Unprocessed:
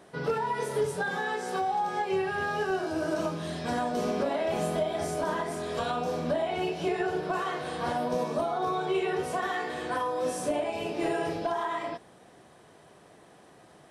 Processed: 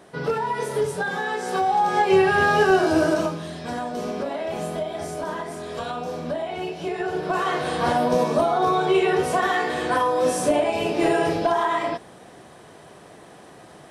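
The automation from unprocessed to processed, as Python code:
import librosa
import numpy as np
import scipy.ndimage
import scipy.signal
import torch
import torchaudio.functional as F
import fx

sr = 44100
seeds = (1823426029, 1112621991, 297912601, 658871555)

y = fx.gain(x, sr, db=fx.line((1.3, 4.5), (2.18, 12.0), (2.98, 12.0), (3.5, 0.5), (6.89, 0.5), (7.56, 9.0)))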